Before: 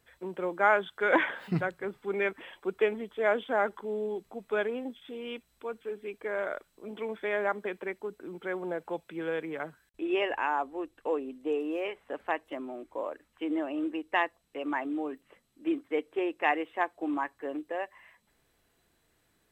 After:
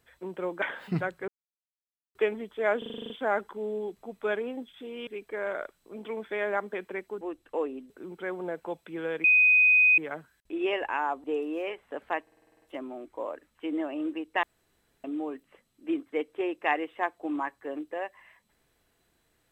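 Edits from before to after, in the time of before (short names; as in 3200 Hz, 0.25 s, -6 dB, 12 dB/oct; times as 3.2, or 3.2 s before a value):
0.62–1.22 cut
1.88–2.75 mute
3.38 stutter 0.04 s, 9 plays
5.35–5.99 cut
9.47 add tone 2500 Hz -16.5 dBFS 0.74 s
10.73–11.42 move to 8.13
12.4 stutter 0.05 s, 9 plays
14.21–14.82 room tone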